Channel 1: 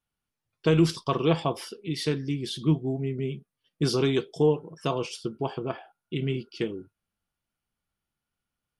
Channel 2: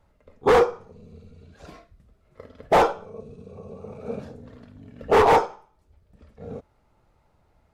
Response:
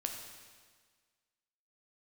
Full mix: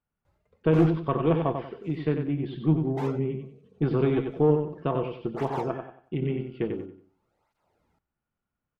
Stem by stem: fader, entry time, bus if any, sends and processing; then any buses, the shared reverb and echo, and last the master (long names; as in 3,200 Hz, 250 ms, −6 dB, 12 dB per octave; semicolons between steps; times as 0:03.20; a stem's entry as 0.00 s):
+1.5 dB, 0.00 s, no send, echo send −6.5 dB, one-sided soft clipper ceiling −18 dBFS; Gaussian smoothing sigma 3.9 samples
−2.5 dB, 0.25 s, no send, no echo send, brickwall limiter −13.5 dBFS, peak gain reduction 4.5 dB; through-zero flanger with one copy inverted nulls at 0.48 Hz, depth 4.6 ms; automatic ducking −10 dB, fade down 0.35 s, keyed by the first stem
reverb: not used
echo: repeating echo 93 ms, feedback 30%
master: no processing